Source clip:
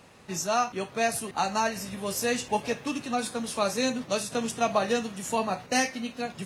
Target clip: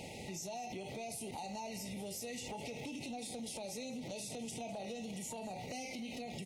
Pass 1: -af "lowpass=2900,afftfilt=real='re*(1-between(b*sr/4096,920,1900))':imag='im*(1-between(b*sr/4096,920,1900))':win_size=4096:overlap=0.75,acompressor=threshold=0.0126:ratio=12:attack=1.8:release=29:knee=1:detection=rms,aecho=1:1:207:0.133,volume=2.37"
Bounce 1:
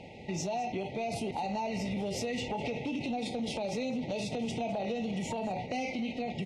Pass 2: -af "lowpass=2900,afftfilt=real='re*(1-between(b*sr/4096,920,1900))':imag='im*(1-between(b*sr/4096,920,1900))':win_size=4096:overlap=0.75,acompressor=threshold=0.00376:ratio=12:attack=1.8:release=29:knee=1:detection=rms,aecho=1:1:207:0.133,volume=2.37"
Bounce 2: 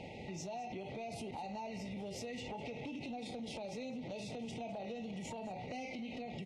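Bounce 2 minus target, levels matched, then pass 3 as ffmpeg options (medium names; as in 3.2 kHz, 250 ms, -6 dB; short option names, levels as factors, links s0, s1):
4 kHz band -2.5 dB
-af "afftfilt=real='re*(1-between(b*sr/4096,920,1900))':imag='im*(1-between(b*sr/4096,920,1900))':win_size=4096:overlap=0.75,acompressor=threshold=0.00376:ratio=12:attack=1.8:release=29:knee=1:detection=rms,aecho=1:1:207:0.133,volume=2.37"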